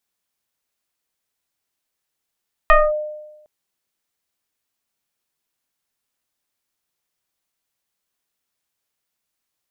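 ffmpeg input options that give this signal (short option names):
-f lavfi -i "aevalsrc='0.531*pow(10,-3*t/1.05)*sin(2*PI*606*t+2.1*clip(1-t/0.22,0,1)*sin(2*PI*1.03*606*t))':d=0.76:s=44100"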